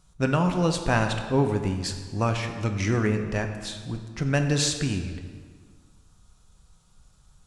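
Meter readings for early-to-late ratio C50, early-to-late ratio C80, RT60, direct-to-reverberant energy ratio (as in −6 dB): 7.0 dB, 8.5 dB, 1.7 s, 5.0 dB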